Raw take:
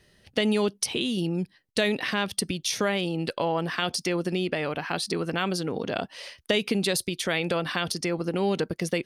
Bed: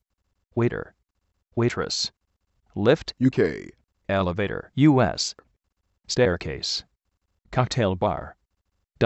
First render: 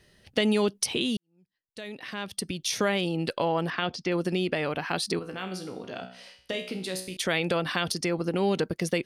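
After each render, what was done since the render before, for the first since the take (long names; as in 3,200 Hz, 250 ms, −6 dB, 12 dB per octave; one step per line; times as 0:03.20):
0:01.17–0:02.80: fade in quadratic
0:03.70–0:04.12: high-frequency loss of the air 180 metres
0:05.19–0:07.17: tuned comb filter 62 Hz, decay 0.56 s, mix 80%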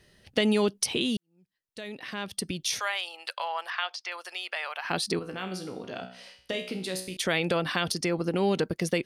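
0:02.79–0:04.85: high-pass filter 800 Hz 24 dB per octave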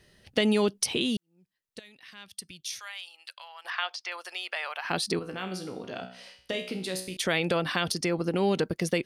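0:01.79–0:03.65: guitar amp tone stack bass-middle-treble 5-5-5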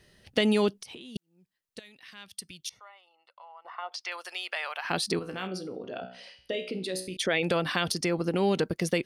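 0:00.76–0:01.16: downward compressor 20 to 1, threshold −40 dBFS
0:02.69–0:03.92: Savitzky-Golay smoothing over 65 samples
0:05.47–0:07.43: spectral envelope exaggerated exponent 1.5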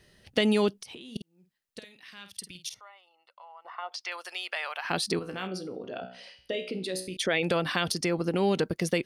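0:01.03–0:02.81: double-tracking delay 50 ms −9 dB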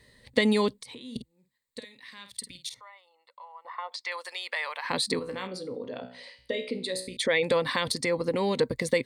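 EQ curve with evenly spaced ripples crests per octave 1, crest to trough 11 dB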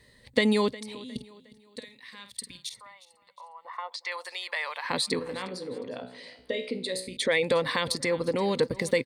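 repeating echo 359 ms, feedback 39%, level −19 dB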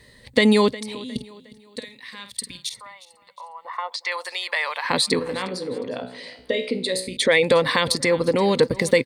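level +7.5 dB
brickwall limiter −3 dBFS, peak gain reduction 2.5 dB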